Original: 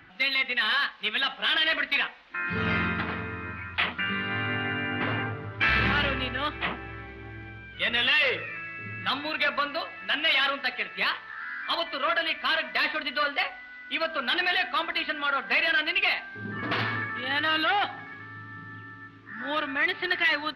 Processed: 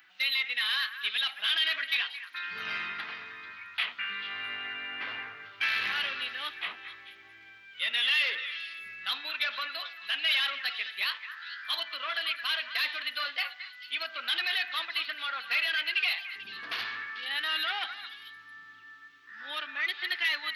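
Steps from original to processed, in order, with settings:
first difference
echo through a band-pass that steps 220 ms, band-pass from 1,600 Hz, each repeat 1.4 octaves, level −8 dB
level +5.5 dB

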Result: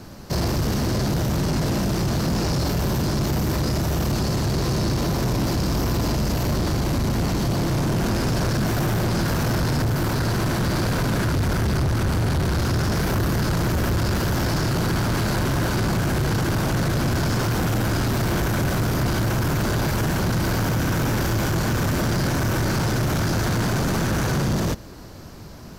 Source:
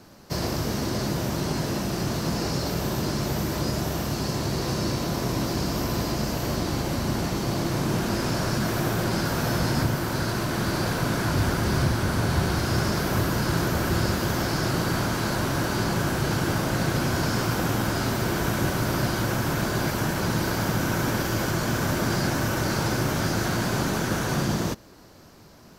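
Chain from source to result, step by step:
low-shelf EQ 140 Hz +10 dB
in parallel at +1.5 dB: brickwall limiter −16.5 dBFS, peak gain reduction 10 dB
on the sum: soft clipping −18.5 dBFS, distortion −10 dB

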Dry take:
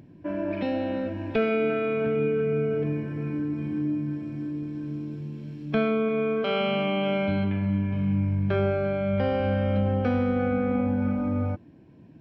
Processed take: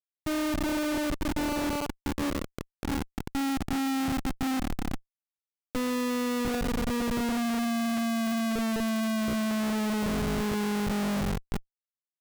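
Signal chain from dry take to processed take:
vocoder with a gliding carrier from D#4, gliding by −8 semitones
single-tap delay 468 ms −18.5 dB
comparator with hysteresis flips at −28 dBFS

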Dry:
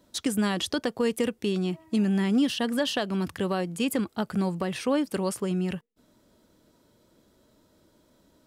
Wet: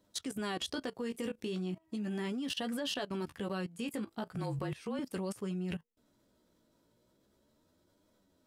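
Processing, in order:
0:04.36–0:04.99: frequency shifter −33 Hz
flanger 0.37 Hz, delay 9.5 ms, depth 9 ms, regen +25%
output level in coarse steps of 18 dB

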